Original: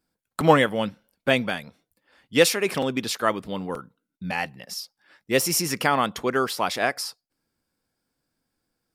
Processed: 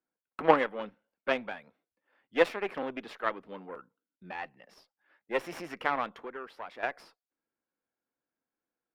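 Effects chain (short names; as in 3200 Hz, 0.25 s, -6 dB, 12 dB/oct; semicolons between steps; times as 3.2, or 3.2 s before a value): 6.19–6.83 compressor 2.5:1, threshold -30 dBFS, peak gain reduction 8 dB; added harmonics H 3 -13 dB, 4 -23 dB, 6 -25 dB, 8 -24 dB, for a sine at -2.5 dBFS; three-band isolator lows -15 dB, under 250 Hz, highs -24 dB, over 2800 Hz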